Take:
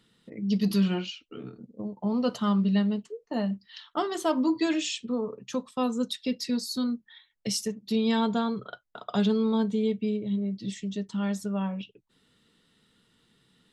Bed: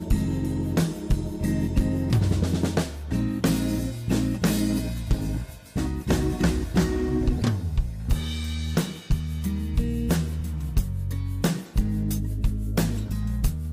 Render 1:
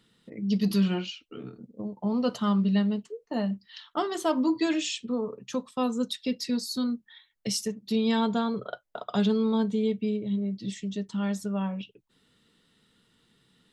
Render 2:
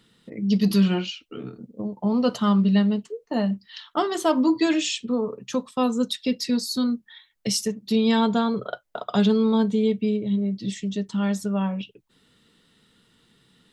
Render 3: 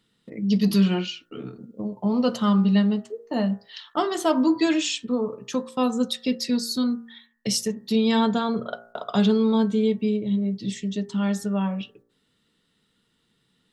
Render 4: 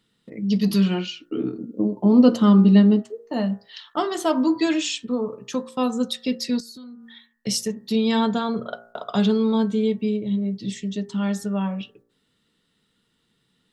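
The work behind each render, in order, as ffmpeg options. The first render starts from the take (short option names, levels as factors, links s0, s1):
-filter_complex "[0:a]asettb=1/sr,asplit=3[s0][s1][s2];[s0]atrim=end=8.544[s3];[s1]atrim=start=8.54:end=9.04,asetpts=PTS-STARTPTS,afade=t=in:d=0.004:c=qsin,afade=t=out:st=0.496:d=0.004:c=qsin,equalizer=f=590:w=1.5:g=9.5[s4];[s2]atrim=start=9.036[s5];[s3][s4]acrossfade=d=0.004:c1=hsin:c2=qsin[s6];[s6][s5]acrossfade=d=0.004:c1=qsin:c2=hsin"
-af "volume=1.78"
-af "agate=range=0.398:threshold=0.00251:ratio=16:detection=peak,bandreject=f=57.99:t=h:w=4,bandreject=f=115.98:t=h:w=4,bandreject=f=173.97:t=h:w=4,bandreject=f=231.96:t=h:w=4,bandreject=f=289.95:t=h:w=4,bandreject=f=347.94:t=h:w=4,bandreject=f=405.93:t=h:w=4,bandreject=f=463.92:t=h:w=4,bandreject=f=521.91:t=h:w=4,bandreject=f=579.9:t=h:w=4,bandreject=f=637.89:t=h:w=4,bandreject=f=695.88:t=h:w=4,bandreject=f=753.87:t=h:w=4,bandreject=f=811.86:t=h:w=4,bandreject=f=869.85:t=h:w=4,bandreject=f=927.84:t=h:w=4,bandreject=f=985.83:t=h:w=4,bandreject=f=1043.82:t=h:w=4,bandreject=f=1101.81:t=h:w=4,bandreject=f=1159.8:t=h:w=4,bandreject=f=1217.79:t=h:w=4,bandreject=f=1275.78:t=h:w=4,bandreject=f=1333.77:t=h:w=4,bandreject=f=1391.76:t=h:w=4,bandreject=f=1449.75:t=h:w=4,bandreject=f=1507.74:t=h:w=4,bandreject=f=1565.73:t=h:w=4,bandreject=f=1623.72:t=h:w=4,bandreject=f=1681.71:t=h:w=4,bandreject=f=1739.7:t=h:w=4,bandreject=f=1797.69:t=h:w=4,bandreject=f=1855.68:t=h:w=4,bandreject=f=1913.67:t=h:w=4"
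-filter_complex "[0:a]asettb=1/sr,asplit=3[s0][s1][s2];[s0]atrim=end=1.204[s3];[s1]atrim=start=1.2:end=3.03,asetpts=PTS-STARTPTS,afade=t=in:d=0.004:c=qsin,afade=t=out:st=1.826:d=0.004:c=qsin,equalizer=f=310:w=1.5:g=15[s4];[s2]atrim=start=3.026[s5];[s3][s4]acrossfade=d=0.004:c1=hsin:c2=qsin[s6];[s6][s5]acrossfade=d=0.004:c1=qsin:c2=hsin,asettb=1/sr,asplit=3[s7][s8][s9];[s7]atrim=end=6.604[s10];[s8]atrim=start=6.6:end=7.47,asetpts=PTS-STARTPTS,afade=t=in:d=0.004:c=qsin,afade=t=out:st=0.866:d=0.004:c=qsin,acompressor=threshold=0.0126:ratio=12:attack=3.2:release=140:knee=1:detection=peak[s11];[s9]atrim=start=7.466[s12];[s10][s11]acrossfade=d=0.004:c1=hsin:c2=qsin[s13];[s13][s12]acrossfade=d=0.004:c1=qsin:c2=hsin"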